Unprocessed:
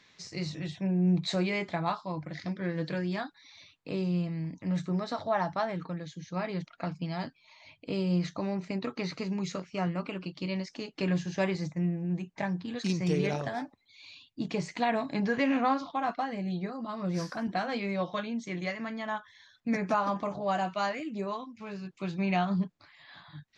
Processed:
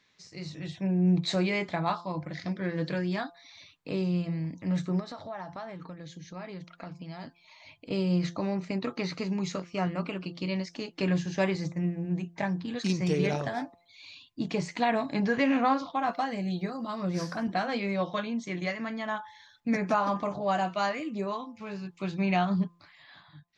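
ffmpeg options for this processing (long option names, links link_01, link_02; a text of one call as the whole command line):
ffmpeg -i in.wav -filter_complex "[0:a]asettb=1/sr,asplit=3[link_01][link_02][link_03];[link_01]atrim=end=5.004[link_04];[link_02]atrim=start=5:end=7.91,asetpts=PTS-STARTPTS,afade=type=in:duration=0.004:curve=qsin,afade=type=out:start_time=2.906:duration=0.004:curve=qsin,acompressor=threshold=-43dB:ratio=2.5:attack=3.2:release=140:knee=1:detection=peak[link_05];[link_03]atrim=start=7.906[link_06];[link_04][link_05]acrossfade=duration=0.004:curve1=hsin:curve2=qsin[link_07];[link_07][link_06]acrossfade=duration=0.004:curve1=qsin:curve2=hsin,asettb=1/sr,asplit=3[link_08][link_09][link_10];[link_08]atrim=end=16.134[link_11];[link_09]atrim=start=16.13:end=17.05,asetpts=PTS-STARTPTS,afade=type=in:duration=0.004:curve=qsin,afade=type=out:start_time=0.916:duration=0.004:curve=qsin,highshelf=frequency=5800:gain=11[link_12];[link_10]atrim=start=17.046[link_13];[link_11][link_12]acrossfade=duration=0.004:curve1=hsin:curve2=qsin[link_14];[link_14][link_13]acrossfade=duration=0.004:curve1=qsin:curve2=hsin,dynaudnorm=framelen=180:gausssize=7:maxgain=9dB,bandreject=frequency=172:width_type=h:width=4,bandreject=frequency=344:width_type=h:width=4,bandreject=frequency=516:width_type=h:width=4,bandreject=frequency=688:width_type=h:width=4,bandreject=frequency=860:width_type=h:width=4,bandreject=frequency=1032:width_type=h:width=4,bandreject=frequency=1204:width_type=h:width=4,volume=-7dB" out.wav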